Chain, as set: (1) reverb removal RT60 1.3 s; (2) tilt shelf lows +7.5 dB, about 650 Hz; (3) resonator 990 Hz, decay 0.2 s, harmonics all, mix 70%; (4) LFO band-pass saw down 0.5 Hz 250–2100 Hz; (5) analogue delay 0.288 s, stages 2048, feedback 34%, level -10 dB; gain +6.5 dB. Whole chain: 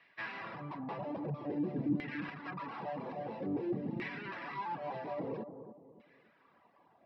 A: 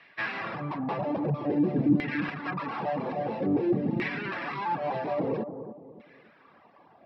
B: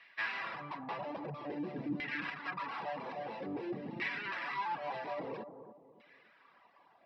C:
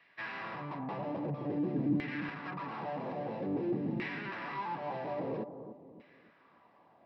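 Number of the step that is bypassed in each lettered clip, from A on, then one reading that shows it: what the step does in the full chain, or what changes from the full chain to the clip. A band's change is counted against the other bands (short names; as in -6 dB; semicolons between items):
3, loudness change +10.0 LU; 2, 125 Hz band -9.0 dB; 1, loudness change +2.5 LU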